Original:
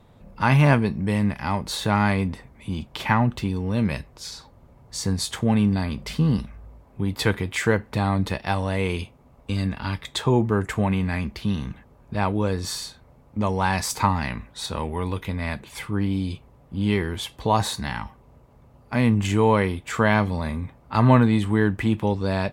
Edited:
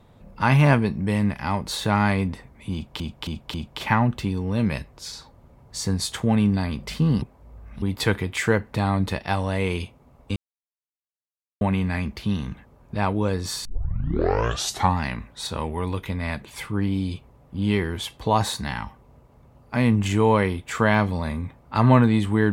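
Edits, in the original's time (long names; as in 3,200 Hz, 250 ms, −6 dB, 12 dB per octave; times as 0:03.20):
0:02.73–0:03.00: repeat, 4 plays
0:06.41–0:07.01: reverse
0:09.55–0:10.80: silence
0:12.84: tape start 1.32 s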